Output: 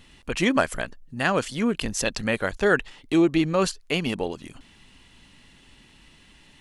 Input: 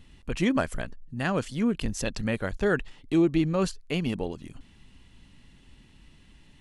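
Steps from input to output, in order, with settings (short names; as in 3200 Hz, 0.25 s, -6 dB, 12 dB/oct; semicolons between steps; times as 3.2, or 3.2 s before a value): low shelf 280 Hz -11 dB; gain +7.5 dB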